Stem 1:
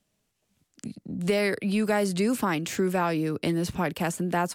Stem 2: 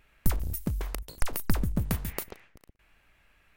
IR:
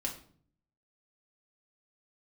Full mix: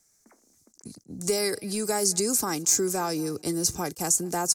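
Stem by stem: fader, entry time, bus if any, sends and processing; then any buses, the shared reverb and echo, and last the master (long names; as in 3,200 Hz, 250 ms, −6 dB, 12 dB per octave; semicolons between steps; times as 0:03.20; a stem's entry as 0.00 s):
−3.0 dB, 0.00 s, no send, echo send −24 dB, high shelf with overshoot 4,300 Hz +13 dB, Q 3; notch filter 1,800 Hz, Q 10; comb filter 2.5 ms, depth 39%
−13.0 dB, 0.00 s, no send, no echo send, Chebyshev band-pass filter 220–2,200 Hz, order 5; downward compressor, threshold −37 dBFS, peak gain reduction 9 dB; automatic ducking −15 dB, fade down 1.60 s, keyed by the first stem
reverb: not used
echo: repeating echo 215 ms, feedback 34%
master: level that may rise only so fast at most 460 dB per second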